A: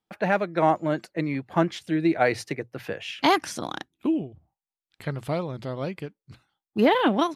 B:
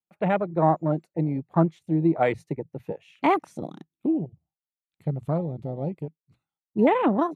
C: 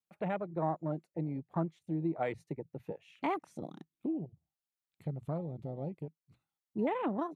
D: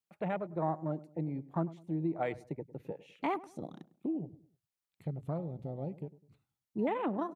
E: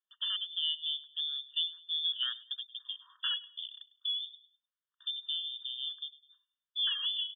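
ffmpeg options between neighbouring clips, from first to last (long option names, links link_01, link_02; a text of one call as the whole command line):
ffmpeg -i in.wav -af "afwtdn=0.0398,equalizer=frequency=160:width_type=o:width=0.33:gain=7,equalizer=frequency=1600:width_type=o:width=0.33:gain=-9,equalizer=frequency=3150:width_type=o:width=0.33:gain=-5,equalizer=frequency=5000:width_type=o:width=0.33:gain=-10" out.wav
ffmpeg -i in.wav -af "acompressor=threshold=-48dB:ratio=1.5,volume=-1.5dB" out.wav
ffmpeg -i in.wav -filter_complex "[0:a]asplit=2[link_01][link_02];[link_02]adelay=102,lowpass=frequency=990:poles=1,volume=-17dB,asplit=2[link_03][link_04];[link_04]adelay=102,lowpass=frequency=990:poles=1,volume=0.38,asplit=2[link_05][link_06];[link_06]adelay=102,lowpass=frequency=990:poles=1,volume=0.38[link_07];[link_01][link_03][link_05][link_07]amix=inputs=4:normalize=0" out.wav
ffmpeg -i in.wav -af "lowpass=frequency=3100:width_type=q:width=0.5098,lowpass=frequency=3100:width_type=q:width=0.6013,lowpass=frequency=3100:width_type=q:width=0.9,lowpass=frequency=3100:width_type=q:width=2.563,afreqshift=-3700,afftfilt=real='re*eq(mod(floor(b*sr/1024/930),2),1)':imag='im*eq(mod(floor(b*sr/1024/930),2),1)':win_size=1024:overlap=0.75" out.wav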